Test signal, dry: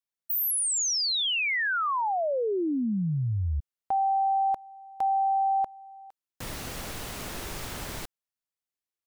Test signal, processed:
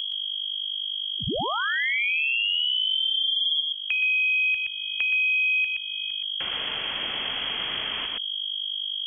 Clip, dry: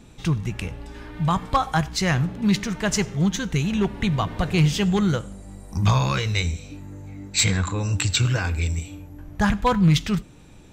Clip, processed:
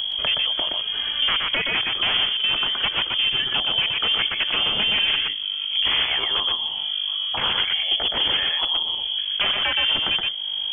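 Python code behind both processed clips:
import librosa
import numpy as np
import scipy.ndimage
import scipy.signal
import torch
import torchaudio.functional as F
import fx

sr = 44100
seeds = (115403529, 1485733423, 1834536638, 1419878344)

p1 = scipy.signal.sosfilt(scipy.signal.butter(2, 58.0, 'highpass', fs=sr, output='sos'), x)
p2 = fx.level_steps(p1, sr, step_db=11)
p3 = 10.0 ** (-23.0 / 20.0) * (np.abs((p2 / 10.0 ** (-23.0 / 20.0) + 3.0) % 4.0 - 2.0) - 1.0)
p4 = fx.add_hum(p3, sr, base_hz=50, snr_db=11)
p5 = fx.freq_invert(p4, sr, carrier_hz=3300)
p6 = p5 + fx.echo_single(p5, sr, ms=121, db=-3.5, dry=0)
p7 = fx.band_squash(p6, sr, depth_pct=70)
y = p7 * librosa.db_to_amplitude(6.0)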